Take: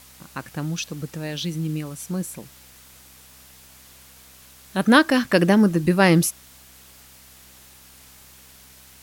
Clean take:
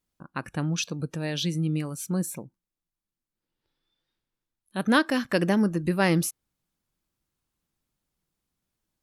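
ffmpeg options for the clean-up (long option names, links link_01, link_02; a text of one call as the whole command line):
ffmpeg -i in.wav -af "bandreject=frequency=65:width_type=h:width=4,bandreject=frequency=130:width_type=h:width=4,bandreject=frequency=195:width_type=h:width=4,bandreject=frequency=260:width_type=h:width=4,afwtdn=0.004,asetnsamples=nb_out_samples=441:pad=0,asendcmd='3.85 volume volume -6.5dB',volume=0dB" out.wav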